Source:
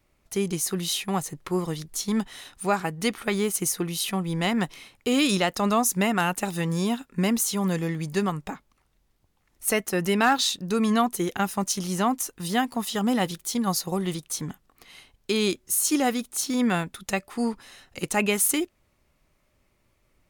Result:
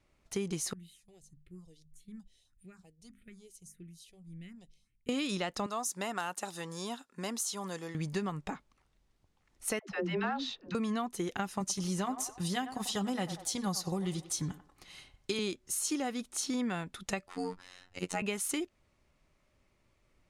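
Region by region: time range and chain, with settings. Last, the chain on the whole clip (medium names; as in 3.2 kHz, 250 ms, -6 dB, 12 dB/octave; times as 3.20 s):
0.73–5.09 s: amplifier tone stack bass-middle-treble 10-0-1 + hum notches 50/100/150/200/250 Hz + phase shifter stages 4, 1.7 Hz, lowest notch 190–1000 Hz
5.66–7.95 s: high-pass 990 Hz 6 dB/octave + peaking EQ 2.3 kHz -9 dB 1 oct
9.79–10.75 s: distance through air 220 m + phase dispersion lows, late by 126 ms, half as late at 380 Hz
11.60–15.39 s: tone controls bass +5 dB, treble +5 dB + comb of notches 230 Hz + band-passed feedback delay 93 ms, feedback 46%, band-pass 830 Hz, level -11 dB
17.27–18.22 s: median filter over 3 samples + robot voice 90.8 Hz
whole clip: low-pass 8.3 kHz 12 dB/octave; compression, threshold -27 dBFS; trim -3.5 dB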